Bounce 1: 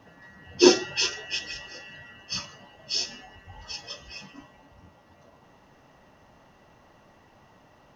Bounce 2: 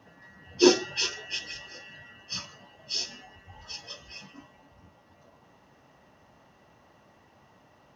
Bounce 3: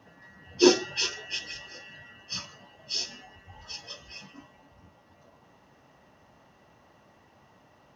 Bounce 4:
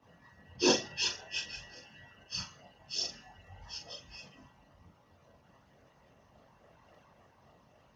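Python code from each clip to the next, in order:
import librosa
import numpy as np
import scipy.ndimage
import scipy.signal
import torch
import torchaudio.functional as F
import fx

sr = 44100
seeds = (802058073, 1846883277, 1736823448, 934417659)

y1 = scipy.signal.sosfilt(scipy.signal.butter(2, 59.0, 'highpass', fs=sr, output='sos'), x)
y1 = y1 * librosa.db_to_amplitude(-2.5)
y2 = y1
y3 = fx.chorus_voices(y2, sr, voices=6, hz=0.6, base_ms=23, depth_ms=1.1, mix_pct=60)
y3 = fx.doubler(y3, sr, ms=42.0, db=-7)
y3 = fx.hpss(y3, sr, part='percussive', gain_db=8)
y3 = y3 * librosa.db_to_amplitude(-7.5)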